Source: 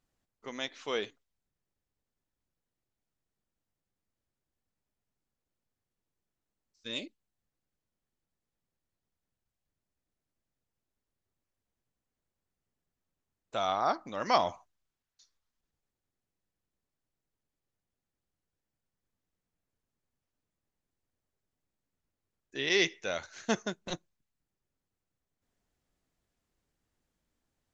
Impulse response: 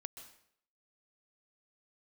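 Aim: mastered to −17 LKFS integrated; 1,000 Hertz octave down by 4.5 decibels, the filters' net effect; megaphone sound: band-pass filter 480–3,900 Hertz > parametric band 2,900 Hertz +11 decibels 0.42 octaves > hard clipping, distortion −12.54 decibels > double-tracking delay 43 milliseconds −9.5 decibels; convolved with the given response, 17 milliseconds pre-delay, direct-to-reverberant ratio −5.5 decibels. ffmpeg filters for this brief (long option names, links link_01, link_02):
-filter_complex "[0:a]equalizer=frequency=1000:width_type=o:gain=-6,asplit=2[link_01][link_02];[1:a]atrim=start_sample=2205,adelay=17[link_03];[link_02][link_03]afir=irnorm=-1:irlink=0,volume=9.5dB[link_04];[link_01][link_04]amix=inputs=2:normalize=0,highpass=480,lowpass=3900,equalizer=frequency=2900:width_type=o:width=0.42:gain=11,asoftclip=type=hard:threshold=-16dB,asplit=2[link_05][link_06];[link_06]adelay=43,volume=-9.5dB[link_07];[link_05][link_07]amix=inputs=2:normalize=0,volume=10dB"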